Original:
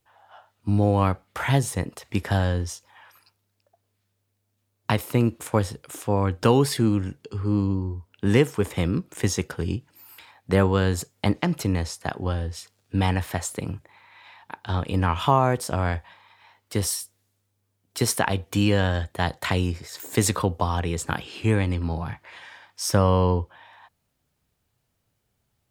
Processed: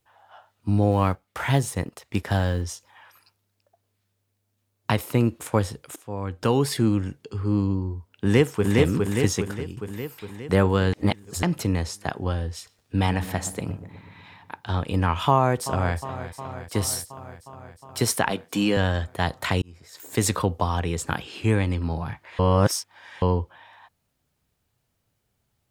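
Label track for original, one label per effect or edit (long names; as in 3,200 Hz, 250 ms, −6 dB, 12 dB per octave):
0.910000	2.620000	mu-law and A-law mismatch coded by A
5.960000	6.830000	fade in, from −16 dB
7.960000	8.760000	delay throw 410 ms, feedback 60%, level −1.5 dB
9.370000	9.770000	fade out, to −15.5 dB
10.930000	11.430000	reverse
12.540000	14.610000	feedback echo with a low-pass in the loop 123 ms, feedback 67%, low-pass 1,000 Hz, level −12 dB
15.300000	15.960000	delay throw 360 ms, feedback 75%, level −12.5 dB
18.300000	18.770000	high-pass filter 160 Hz 24 dB per octave
19.620000	20.320000	fade in
22.390000	23.220000	reverse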